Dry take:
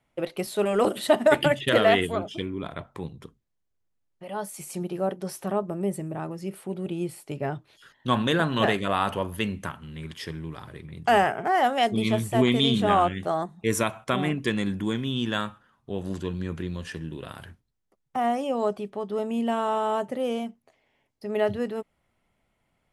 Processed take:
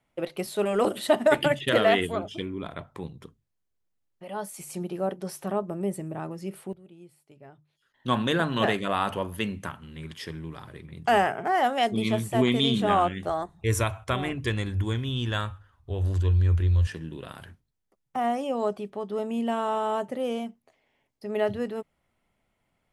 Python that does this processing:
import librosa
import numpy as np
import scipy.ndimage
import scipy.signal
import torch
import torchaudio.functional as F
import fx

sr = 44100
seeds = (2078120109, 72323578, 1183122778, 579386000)

y = fx.low_shelf_res(x, sr, hz=120.0, db=14.0, q=3.0, at=(13.29, 16.87))
y = fx.edit(y, sr, fx.fade_down_up(start_s=6.57, length_s=1.53, db=-18.0, fade_s=0.16, curve='log'), tone=tone)
y = fx.hum_notches(y, sr, base_hz=50, count=3)
y = y * librosa.db_to_amplitude(-1.5)